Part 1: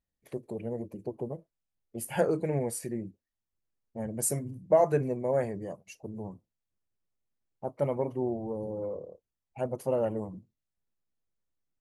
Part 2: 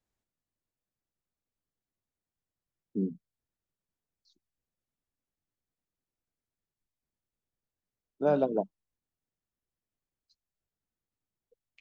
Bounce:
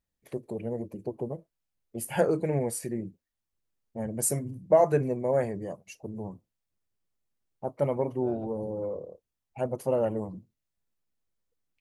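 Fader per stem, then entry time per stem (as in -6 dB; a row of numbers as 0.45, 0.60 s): +2.0, -19.0 dB; 0.00, 0.00 s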